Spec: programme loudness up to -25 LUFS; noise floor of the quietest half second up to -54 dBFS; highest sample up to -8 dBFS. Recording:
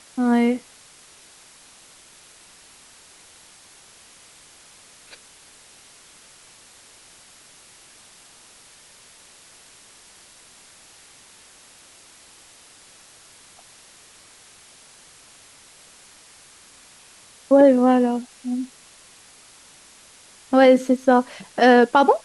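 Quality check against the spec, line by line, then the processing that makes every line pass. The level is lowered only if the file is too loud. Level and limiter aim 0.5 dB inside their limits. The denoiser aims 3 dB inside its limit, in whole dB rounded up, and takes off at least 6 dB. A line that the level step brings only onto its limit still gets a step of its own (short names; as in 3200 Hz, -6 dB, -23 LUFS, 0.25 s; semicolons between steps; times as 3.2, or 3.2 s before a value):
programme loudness -17.5 LUFS: fail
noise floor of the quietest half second -50 dBFS: fail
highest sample -5.0 dBFS: fail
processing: gain -8 dB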